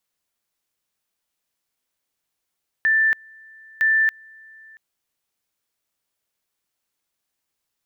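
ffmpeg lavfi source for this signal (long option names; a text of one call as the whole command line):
ffmpeg -f lavfi -i "aevalsrc='pow(10,(-14.5-28.5*gte(mod(t,0.96),0.28))/20)*sin(2*PI*1770*t)':duration=1.92:sample_rate=44100" out.wav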